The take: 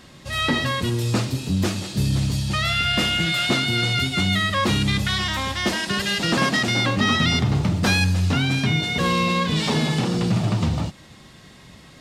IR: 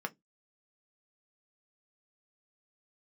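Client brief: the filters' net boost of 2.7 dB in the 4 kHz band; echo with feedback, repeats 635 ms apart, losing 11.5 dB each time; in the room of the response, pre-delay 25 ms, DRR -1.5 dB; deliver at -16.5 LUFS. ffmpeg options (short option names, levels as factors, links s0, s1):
-filter_complex "[0:a]equalizer=f=4000:t=o:g=3.5,aecho=1:1:635|1270|1905:0.266|0.0718|0.0194,asplit=2[s0][s1];[1:a]atrim=start_sample=2205,adelay=25[s2];[s1][s2]afir=irnorm=-1:irlink=0,volume=0.841[s3];[s0][s3]amix=inputs=2:normalize=0"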